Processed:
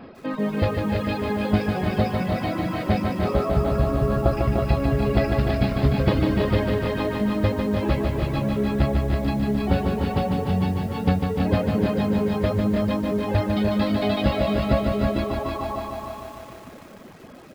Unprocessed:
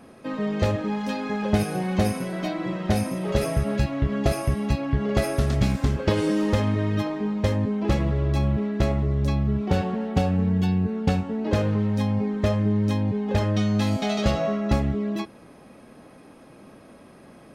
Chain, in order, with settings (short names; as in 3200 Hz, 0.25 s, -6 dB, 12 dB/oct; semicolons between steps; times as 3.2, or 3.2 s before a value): 3.25–4.37 resonant high shelf 1600 Hz -7 dB, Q 3; 15.24–15.83 spectral repair 470–1400 Hz before; on a send: feedback echo 0.324 s, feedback 40%, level -4 dB; on the sum: reverb removal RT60 0.58 s; air absorption 86 m; reverb removal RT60 1.8 s; in parallel at +1.5 dB: limiter -30.5 dBFS, peak gain reduction 22 dB; on the sum: downsampling 11025 Hz; lo-fi delay 0.149 s, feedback 80%, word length 8-bit, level -5 dB